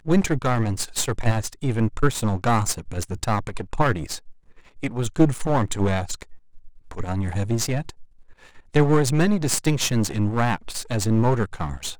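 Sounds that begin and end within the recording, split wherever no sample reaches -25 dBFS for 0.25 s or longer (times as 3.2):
4.83–6.22
6.91–7.9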